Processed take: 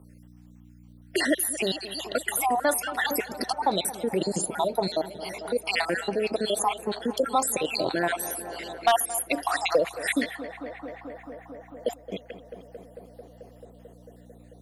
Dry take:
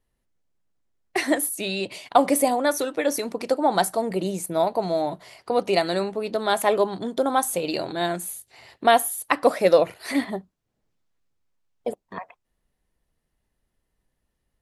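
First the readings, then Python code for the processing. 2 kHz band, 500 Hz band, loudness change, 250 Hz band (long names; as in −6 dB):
+0.5 dB, −5.5 dB, −3.5 dB, −4.5 dB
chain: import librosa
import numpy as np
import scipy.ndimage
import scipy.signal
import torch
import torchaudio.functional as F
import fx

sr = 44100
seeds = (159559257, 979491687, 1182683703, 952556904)

p1 = fx.spec_dropout(x, sr, seeds[0], share_pct=61)
p2 = fx.low_shelf(p1, sr, hz=200.0, db=-7.5)
p3 = fx.over_compress(p2, sr, threshold_db=-34.0, ratio=-1.0)
p4 = p2 + F.gain(torch.from_numpy(p3), -2.0).numpy()
p5 = fx.add_hum(p4, sr, base_hz=60, snr_db=29)
p6 = np.clip(p5, -10.0 ** (-9.5 / 20.0), 10.0 ** (-9.5 / 20.0))
p7 = p6 + fx.echo_tape(p6, sr, ms=221, feedback_pct=86, wet_db=-15.0, lp_hz=2400.0, drive_db=13.0, wow_cents=25, dry=0)
y = fx.band_squash(p7, sr, depth_pct=40)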